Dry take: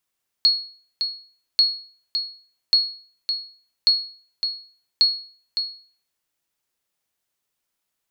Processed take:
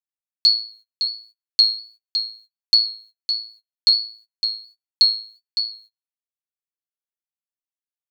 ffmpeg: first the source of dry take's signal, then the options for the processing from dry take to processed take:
-f lavfi -i "aevalsrc='0.355*(sin(2*PI*4330*mod(t,1.14))*exp(-6.91*mod(t,1.14)/0.45)+0.398*sin(2*PI*4330*max(mod(t,1.14)-0.56,0))*exp(-6.91*max(mod(t,1.14)-0.56,0)/0.45))':d=5.7:s=44100"
-af "agate=range=-29dB:threshold=-49dB:ratio=16:detection=peak,flanger=delay=5.3:depth=9.1:regen=13:speed=1.4:shape=triangular,highshelf=f=2.6k:g=8.5"

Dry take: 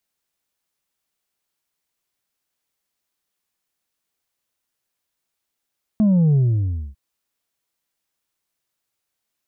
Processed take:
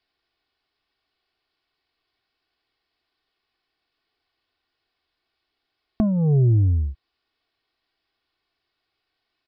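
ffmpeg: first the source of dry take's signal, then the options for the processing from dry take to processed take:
-f lavfi -i "aevalsrc='0.224*clip((0.95-t)/0.6,0,1)*tanh(1.41*sin(2*PI*220*0.95/log(65/220)*(exp(log(65/220)*t/0.95)-1)))/tanh(1.41)':d=0.95:s=44100"
-filter_complex "[0:a]asplit=2[a][b];[b]acompressor=threshold=-27dB:ratio=6,volume=-1dB[c];[a][c]amix=inputs=2:normalize=0,aresample=11025,aresample=44100,aecho=1:1:2.7:0.59"

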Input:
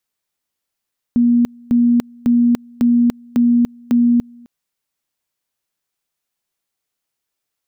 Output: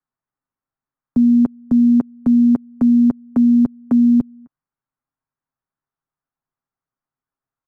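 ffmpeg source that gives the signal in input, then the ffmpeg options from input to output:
-f lavfi -i "aevalsrc='pow(10,(-9.5-28.5*gte(mod(t,0.55),0.29))/20)*sin(2*PI*239*t)':d=3.3:s=44100"
-filter_complex "[0:a]lowpass=f=1.4k:w=0.5412,lowpass=f=1.4k:w=1.3066,aecho=1:1:7.4:0.41,acrossover=split=150|350|680[a][b][c][d];[c]aeval=exprs='val(0)*gte(abs(val(0)),0.00668)':c=same[e];[a][b][e][d]amix=inputs=4:normalize=0"

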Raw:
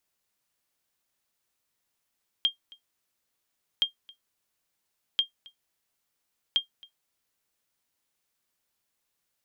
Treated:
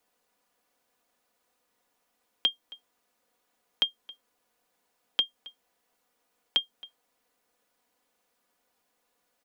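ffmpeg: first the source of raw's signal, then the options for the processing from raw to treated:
-f lavfi -i "aevalsrc='0.188*(sin(2*PI*3210*mod(t,1.37))*exp(-6.91*mod(t,1.37)/0.12)+0.0562*sin(2*PI*3210*max(mod(t,1.37)-0.27,0))*exp(-6.91*max(mod(t,1.37)-0.27,0)/0.12))':d=5.48:s=44100"
-filter_complex "[0:a]equalizer=f=580:w=0.4:g=12.5,aecho=1:1:4.1:0.58,acrossover=split=260|480|3800[a][b][c][d];[c]acompressor=threshold=-30dB:ratio=6[e];[a][b][e][d]amix=inputs=4:normalize=0"

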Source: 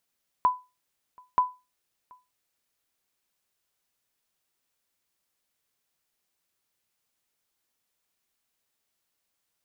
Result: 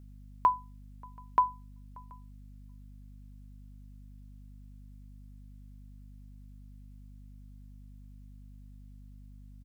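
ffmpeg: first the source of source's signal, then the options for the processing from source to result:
-f lavfi -i "aevalsrc='0.211*(sin(2*PI*1000*mod(t,0.93))*exp(-6.91*mod(t,0.93)/0.26)+0.0335*sin(2*PI*1000*max(mod(t,0.93)-0.73,0))*exp(-6.91*max(mod(t,0.93)-0.73,0)/0.26))':d=1.86:s=44100"
-filter_complex "[0:a]aeval=exprs='val(0)+0.00355*(sin(2*PI*50*n/s)+sin(2*PI*2*50*n/s)/2+sin(2*PI*3*50*n/s)/3+sin(2*PI*4*50*n/s)/4+sin(2*PI*5*50*n/s)/5)':c=same,asplit=2[a][b];[b]adelay=583.1,volume=-26dB,highshelf=f=4k:g=-13.1[c];[a][c]amix=inputs=2:normalize=0"

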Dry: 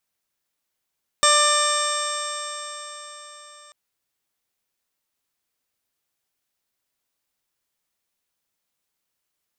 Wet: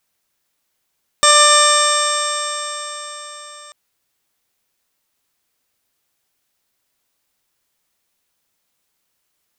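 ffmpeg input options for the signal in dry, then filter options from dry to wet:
-f lavfi -i "aevalsrc='0.0794*pow(10,-3*t/4.52)*sin(2*PI*591.28*t)+0.141*pow(10,-3*t/4.52)*sin(2*PI*1184.27*t)+0.0708*pow(10,-3*t/4.52)*sin(2*PI*1780.64*t)+0.0398*pow(10,-3*t/4.52)*sin(2*PI*2382.09*t)+0.0282*pow(10,-3*t/4.52)*sin(2*PI*2990.25*t)+0.0891*pow(10,-3*t/4.52)*sin(2*PI*3606.75*t)+0.0133*pow(10,-3*t/4.52)*sin(2*PI*4233.18*t)+0.0266*pow(10,-3*t/4.52)*sin(2*PI*4871.08*t)+0.0708*pow(10,-3*t/4.52)*sin(2*PI*5521.93*t)+0.0355*pow(10,-3*t/4.52)*sin(2*PI*6187.18*t)+0.0178*pow(10,-3*t/4.52)*sin(2*PI*6868.21*t)+0.0708*pow(10,-3*t/4.52)*sin(2*PI*7566.34*t)+0.0794*pow(10,-3*t/4.52)*sin(2*PI*8282.83*t)':d=2.49:s=44100"
-af "alimiter=level_in=8.5dB:limit=-1dB:release=50:level=0:latency=1"

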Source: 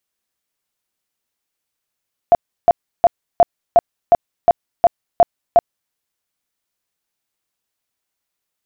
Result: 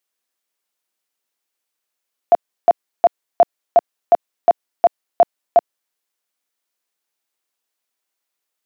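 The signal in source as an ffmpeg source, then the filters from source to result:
-f lavfi -i "aevalsrc='0.562*sin(2*PI*690*mod(t,0.36))*lt(mod(t,0.36),20/690)':d=3.6:s=44100"
-af "highpass=290"

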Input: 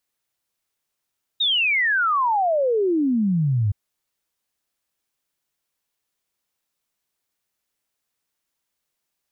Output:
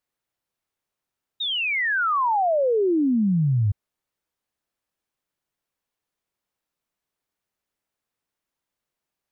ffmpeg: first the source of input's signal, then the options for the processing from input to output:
-f lavfi -i "aevalsrc='0.141*clip(min(t,2.32-t)/0.01,0,1)*sin(2*PI*3800*2.32/log(97/3800)*(exp(log(97/3800)*t/2.32)-1))':d=2.32:s=44100"
-af "highshelf=f=2.5k:g=-9"

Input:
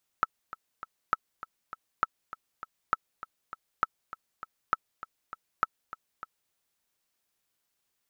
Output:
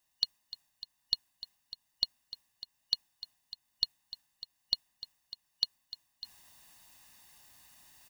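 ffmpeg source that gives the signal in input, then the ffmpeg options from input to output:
-f lavfi -i "aevalsrc='pow(10,(-10.5-15.5*gte(mod(t,3*60/200),60/200))/20)*sin(2*PI*1310*mod(t,60/200))*exp(-6.91*mod(t,60/200)/0.03)':d=6.3:s=44100"
-af "afftfilt=real='real(if(lt(b,272),68*(eq(floor(b/68),0)*2+eq(floor(b/68),1)*3+eq(floor(b/68),2)*0+eq(floor(b/68),3)*1)+mod(b,68),b),0)':imag='imag(if(lt(b,272),68*(eq(floor(b/68),0)*2+eq(floor(b/68),1)*3+eq(floor(b/68),2)*0+eq(floor(b/68),3)*1)+mod(b,68),b),0)':win_size=2048:overlap=0.75,aecho=1:1:1.1:0.7,areverse,acompressor=mode=upward:threshold=-43dB:ratio=2.5,areverse"

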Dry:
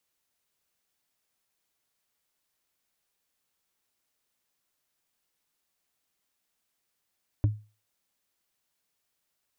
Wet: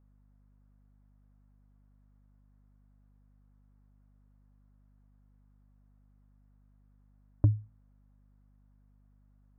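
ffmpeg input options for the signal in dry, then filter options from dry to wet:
-f lavfi -i "aevalsrc='0.15*pow(10,-3*t/0.32)*sin(2*PI*106*t)+0.0531*pow(10,-3*t/0.095)*sin(2*PI*292.2*t)+0.0188*pow(10,-3*t/0.042)*sin(2*PI*572.8*t)+0.00668*pow(10,-3*t/0.023)*sin(2*PI*946.9*t)+0.00237*pow(10,-3*t/0.014)*sin(2*PI*1414*t)':d=0.45:s=44100"
-filter_complex "[0:a]lowpass=f=1.4k:w=0.5412,lowpass=f=1.4k:w=1.3066,asplit=2[a][b];[b]alimiter=level_in=0.5dB:limit=-24dB:level=0:latency=1,volume=-0.5dB,volume=-1.5dB[c];[a][c]amix=inputs=2:normalize=0,aeval=exprs='val(0)+0.000794*(sin(2*PI*50*n/s)+sin(2*PI*2*50*n/s)/2+sin(2*PI*3*50*n/s)/3+sin(2*PI*4*50*n/s)/4+sin(2*PI*5*50*n/s)/5)':c=same"

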